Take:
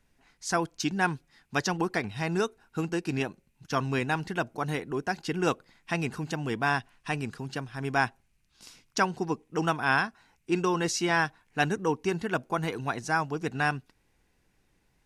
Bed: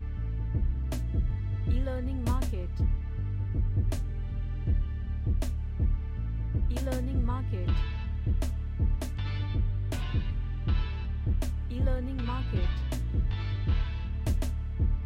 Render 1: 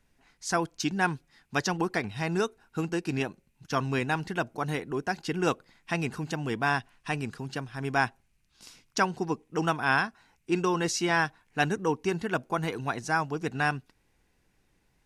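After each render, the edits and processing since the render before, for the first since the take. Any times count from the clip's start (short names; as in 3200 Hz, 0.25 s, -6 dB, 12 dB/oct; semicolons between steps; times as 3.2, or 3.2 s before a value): nothing audible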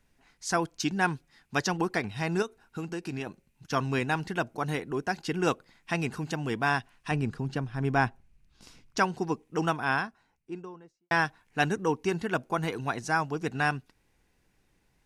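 2.42–3.27 compressor 2:1, threshold -34 dBFS; 7.11–8.98 tilt -2 dB/oct; 9.48–11.11 studio fade out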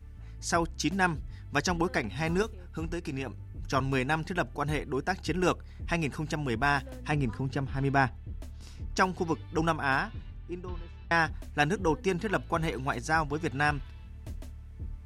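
add bed -12.5 dB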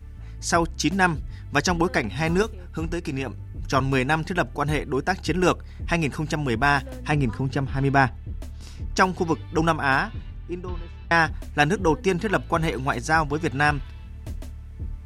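gain +6.5 dB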